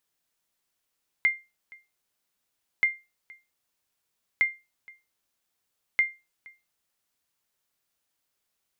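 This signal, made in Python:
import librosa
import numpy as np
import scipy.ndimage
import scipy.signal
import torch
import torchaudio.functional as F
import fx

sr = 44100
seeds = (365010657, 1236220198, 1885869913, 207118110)

y = fx.sonar_ping(sr, hz=2100.0, decay_s=0.25, every_s=1.58, pings=4, echo_s=0.47, echo_db=-25.5, level_db=-14.0)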